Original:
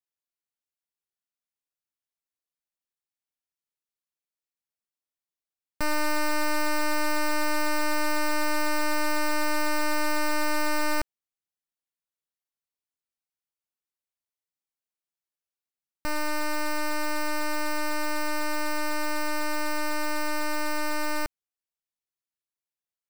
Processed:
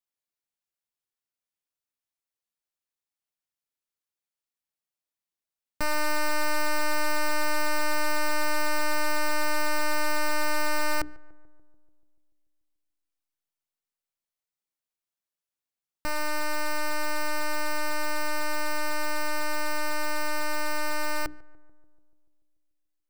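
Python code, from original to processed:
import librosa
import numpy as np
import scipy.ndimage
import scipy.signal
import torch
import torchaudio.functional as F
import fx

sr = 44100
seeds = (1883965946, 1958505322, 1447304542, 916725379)

y = fx.hum_notches(x, sr, base_hz=60, count=7)
y = fx.echo_filtered(y, sr, ms=145, feedback_pct=67, hz=1300.0, wet_db=-20.5)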